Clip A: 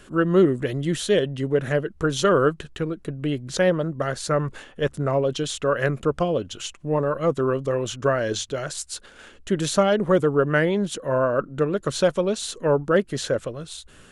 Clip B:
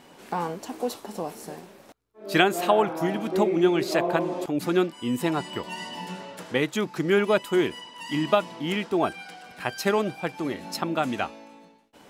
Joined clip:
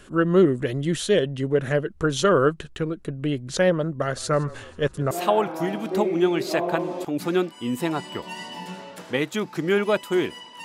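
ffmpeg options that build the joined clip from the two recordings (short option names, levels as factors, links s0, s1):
-filter_complex "[0:a]asettb=1/sr,asplit=3[s0][s1][s2];[s0]atrim=end=3.904[s3];[s1]atrim=start=3.9:end=5.11,asetpts=PTS-STARTPTS,afade=t=in:d=0.004:c=qsin,afade=t=out:st=1.206:d=0.004:c=qsin,asplit=6[s4][s5][s6][s7][s8][s9];[s5]adelay=161,afreqshift=-32,volume=0.0891[s10];[s6]adelay=322,afreqshift=-64,volume=0.055[s11];[s7]adelay=483,afreqshift=-96,volume=0.0343[s12];[s8]adelay=644,afreqshift=-128,volume=0.0211[s13];[s9]adelay=805,afreqshift=-160,volume=0.0132[s14];[s4][s10][s11][s12][s13][s14]amix=inputs=6:normalize=0,atrim=end_sample=53361[s15];[s2]atrim=start=5.106[s16];[s3][s15]acrossfade=d=0.004:c1=hsin:c2=qsin[s17];[s17][s16]acrossfade=d=0.004:c1=qsin:c2=hsin,apad=whole_dur=10.64,atrim=end=10.64,atrim=end=5.112[s18];[1:a]atrim=start=2.518:end=8.05[s19];[s18][s19]acrossfade=d=0.004:c1=hsin:c2=hsin"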